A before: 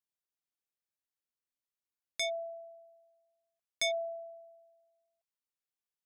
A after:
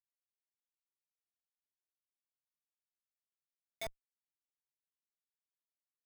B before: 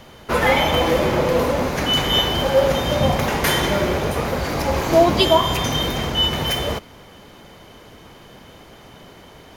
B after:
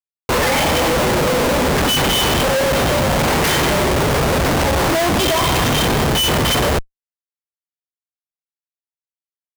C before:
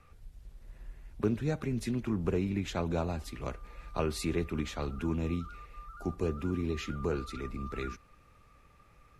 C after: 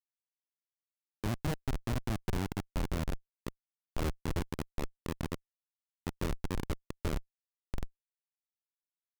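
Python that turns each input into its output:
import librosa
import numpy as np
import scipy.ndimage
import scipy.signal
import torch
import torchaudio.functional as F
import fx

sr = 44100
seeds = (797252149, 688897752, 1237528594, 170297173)

y = fx.schmitt(x, sr, flips_db=-27.0)
y = y * 10.0 ** (4.5 / 20.0)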